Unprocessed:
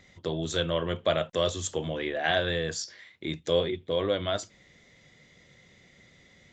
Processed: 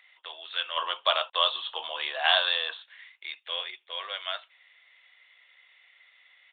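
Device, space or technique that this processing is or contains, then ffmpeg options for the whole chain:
musical greeting card: -filter_complex "[0:a]aresample=8000,aresample=44100,highpass=frequency=900:width=0.5412,highpass=frequency=900:width=1.3066,equalizer=frequency=2700:width_type=o:width=0.35:gain=7.5,asplit=3[link_01][link_02][link_03];[link_01]afade=type=out:start_time=0.76:duration=0.02[link_04];[link_02]equalizer=frequency=125:width_type=o:width=1:gain=9,equalizer=frequency=250:width_type=o:width=1:gain=12,equalizer=frequency=500:width_type=o:width=1:gain=4,equalizer=frequency=1000:width_type=o:width=1:gain=11,equalizer=frequency=2000:width_type=o:width=1:gain=-6,equalizer=frequency=4000:width_type=o:width=1:gain=11,afade=type=in:start_time=0.76:duration=0.02,afade=type=out:start_time=2.81:duration=0.02[link_05];[link_03]afade=type=in:start_time=2.81:duration=0.02[link_06];[link_04][link_05][link_06]amix=inputs=3:normalize=0"

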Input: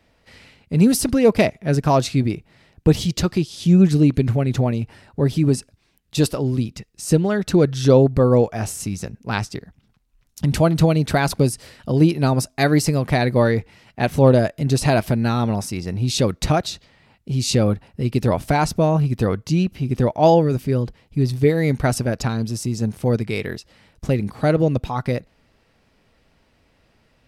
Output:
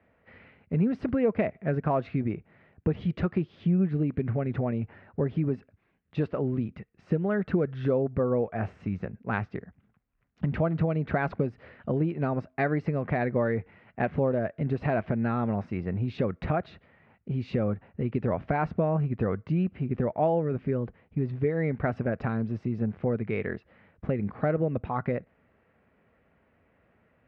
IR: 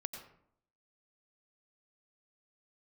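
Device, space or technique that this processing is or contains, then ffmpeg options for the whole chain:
bass amplifier: -af "acompressor=threshold=-18dB:ratio=5,highpass=84,equalizer=frequency=130:width_type=q:width=4:gain=-5,equalizer=frequency=300:width_type=q:width=4:gain=-4,equalizer=frequency=910:width_type=q:width=4:gain=-4,lowpass=frequency=2100:width=0.5412,lowpass=frequency=2100:width=1.3066,volume=-2.5dB"

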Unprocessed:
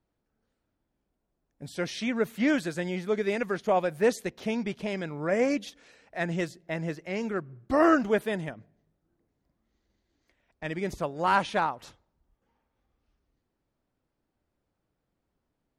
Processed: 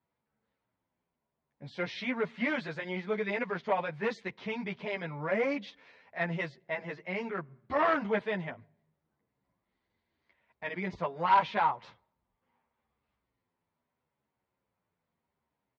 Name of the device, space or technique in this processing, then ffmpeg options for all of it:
barber-pole flanger into a guitar amplifier: -filter_complex "[0:a]asplit=2[link_01][link_02];[link_02]adelay=9.9,afreqshift=-0.79[link_03];[link_01][link_03]amix=inputs=2:normalize=1,asoftclip=type=tanh:threshold=-20.5dB,highpass=96,equalizer=frequency=310:width_type=q:width=4:gain=-8,equalizer=frequency=980:width_type=q:width=4:gain=8,equalizer=frequency=2100:width_type=q:width=4:gain=6,lowpass=frequency=4300:width=0.5412,lowpass=frequency=4300:width=1.3066,asettb=1/sr,asplit=3[link_04][link_05][link_06];[link_04]atrim=end=3.914[link_07];[link_05]atrim=start=3.91:end=4.63,asetpts=PTS-STARTPTS,afade=type=in:duration=0.004:curve=qsin,afade=type=out:start_time=0.716:duration=0.004:curve=qsin,equalizer=frequency=590:width_type=o:width=0.81:gain=-6.5[link_08];[link_06]atrim=start=4.626[link_09];[link_07][link_08]acrossfade=duration=0.004:curve1=hsin:curve2=qsin[link_10];[link_10][link_09]acrossfade=duration=0.004:curve1=qsin:curve2=hsin"

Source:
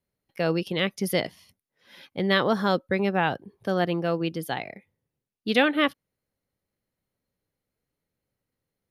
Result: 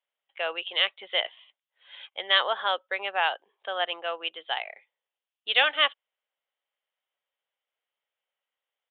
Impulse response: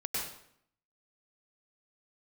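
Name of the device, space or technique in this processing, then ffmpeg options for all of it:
musical greeting card: -af "aresample=8000,aresample=44100,highpass=frequency=650:width=0.5412,highpass=frequency=650:width=1.3066,equalizer=frequency=3100:width_type=o:width=0.43:gain=9"

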